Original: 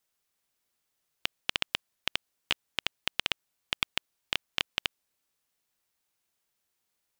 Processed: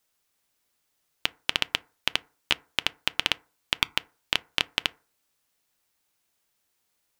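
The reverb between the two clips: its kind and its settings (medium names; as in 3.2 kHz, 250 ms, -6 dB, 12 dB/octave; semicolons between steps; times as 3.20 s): FDN reverb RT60 0.38 s, low-frequency decay 0.9×, high-frequency decay 0.4×, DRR 16 dB; trim +5 dB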